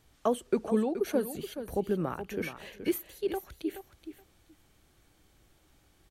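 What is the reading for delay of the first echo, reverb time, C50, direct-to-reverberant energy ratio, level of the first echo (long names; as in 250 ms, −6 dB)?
425 ms, no reverb audible, no reverb audible, no reverb audible, −10.5 dB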